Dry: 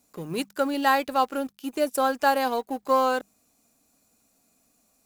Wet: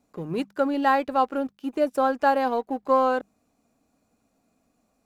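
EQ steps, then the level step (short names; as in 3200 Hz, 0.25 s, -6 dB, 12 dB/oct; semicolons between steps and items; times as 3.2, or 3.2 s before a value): LPF 1300 Hz 6 dB/oct; +2.5 dB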